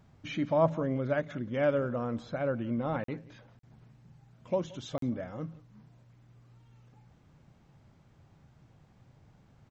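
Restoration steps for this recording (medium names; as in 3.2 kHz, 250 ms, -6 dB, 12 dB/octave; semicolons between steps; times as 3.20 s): interpolate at 3.04/3.59/4.98 s, 43 ms; inverse comb 175 ms -21.5 dB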